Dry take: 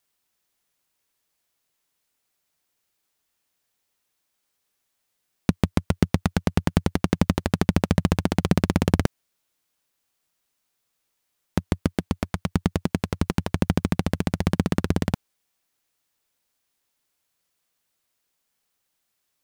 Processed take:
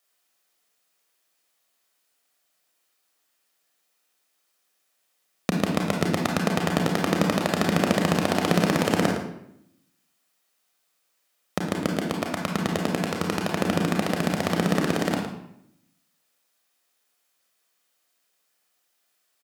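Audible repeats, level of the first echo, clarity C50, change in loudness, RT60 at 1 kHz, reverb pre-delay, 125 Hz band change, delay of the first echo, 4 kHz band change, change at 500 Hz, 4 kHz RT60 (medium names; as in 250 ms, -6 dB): 1, -11.5 dB, 3.0 dB, 0.0 dB, 0.70 s, 29 ms, -4.5 dB, 110 ms, +5.0 dB, +4.0 dB, 0.55 s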